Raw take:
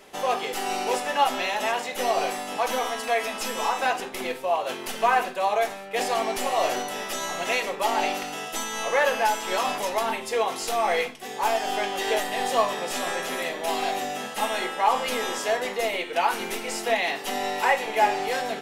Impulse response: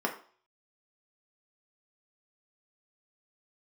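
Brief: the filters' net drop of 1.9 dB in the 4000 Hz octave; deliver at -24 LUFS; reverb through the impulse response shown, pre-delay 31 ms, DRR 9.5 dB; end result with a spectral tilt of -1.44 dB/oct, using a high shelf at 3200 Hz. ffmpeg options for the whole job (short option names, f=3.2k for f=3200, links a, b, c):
-filter_complex "[0:a]highshelf=f=3.2k:g=4.5,equalizer=f=4k:t=o:g=-6,asplit=2[a][b];[1:a]atrim=start_sample=2205,adelay=31[c];[b][c]afir=irnorm=-1:irlink=0,volume=-18dB[d];[a][d]amix=inputs=2:normalize=0,volume=1dB"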